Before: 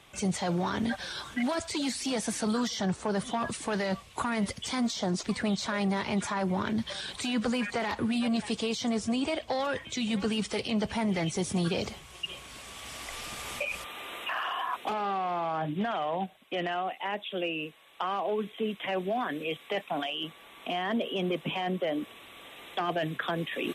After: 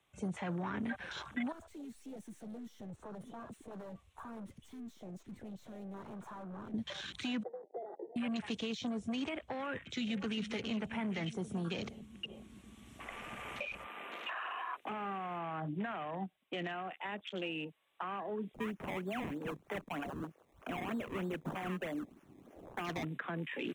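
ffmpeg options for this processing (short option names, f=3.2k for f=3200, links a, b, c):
-filter_complex "[0:a]asettb=1/sr,asplit=3[a][b][c];[a]atrim=end=1.524[d];[b]atrim=start=1.52:end=6.74,asetpts=PTS-STARTPTS,afade=t=in:d=0.004:c=qsin,afade=t=out:st=5.216:d=0.004:c=qsin,aeval=exprs='(tanh(112*val(0)+0.35)-tanh(0.35))/112':c=same[e];[c]atrim=start=6.736[f];[d][e]acrossfade=d=0.004:c1=hsin:c2=qsin[g];[g][f]acrossfade=d=0.004:c1=qsin:c2=hsin,asettb=1/sr,asplit=3[h][i][j];[h]atrim=end=7.434[k];[i]atrim=start=7.43:end=8.16,asetpts=PTS-STARTPTS,afade=t=in:d=0.004:c=qsin,afade=t=out:st=0.726:d=0.004:c=qsin,asuperpass=centerf=520:order=20:qfactor=1.1[l];[j]atrim=start=8.156[m];[k][l]acrossfade=d=0.004:c1=hsin:c2=qsin[n];[n][m]acrossfade=d=0.004:c1=qsin:c2=hsin,asplit=2[o][p];[p]afade=t=in:st=9.76:d=0.01,afade=t=out:st=10.45:d=0.01,aecho=0:1:400|800|1200|1600|2000|2400|2800|3200|3600|4000:0.334965|0.234476|0.164133|0.114893|0.0804252|0.0562976|0.0394083|0.0275858|0.0193101|0.0135171[q];[o][q]amix=inputs=2:normalize=0,asplit=3[r][s][t];[r]afade=t=out:st=14.79:d=0.02[u];[s]aeval=exprs='sgn(val(0))*max(abs(val(0))-0.00224,0)':c=same,afade=t=in:st=14.79:d=0.02,afade=t=out:st=15.38:d=0.02[v];[t]afade=t=in:st=15.38:d=0.02[w];[u][v][w]amix=inputs=3:normalize=0,asettb=1/sr,asplit=3[x][y][z];[x]atrim=end=18.544[aa];[y]atrim=start=18.54:end=23.05,asetpts=PTS-STARTPTS,afade=t=in:d=0.004:c=qsin,afade=t=out:st=4.506:d=0.004:c=qsin,acrusher=samples=21:mix=1:aa=0.000001:lfo=1:lforange=21:lforate=3.2[ab];[z]atrim=start=23.046[ac];[aa][ab]acrossfade=d=0.004:c1=hsin:c2=qsin[ad];[ad][ac]acrossfade=d=0.004:c1=qsin:c2=hsin,afwtdn=0.01,equalizer=f=4.8k:t=o:w=0.34:g=-11.5,acrossover=split=110|330|1200[ae][af][ag][ah];[ae]acompressor=threshold=-59dB:ratio=4[ai];[af]acompressor=threshold=-35dB:ratio=4[aj];[ag]acompressor=threshold=-45dB:ratio=4[ak];[ah]acompressor=threshold=-38dB:ratio=4[al];[ai][aj][ak][al]amix=inputs=4:normalize=0,volume=-2.5dB"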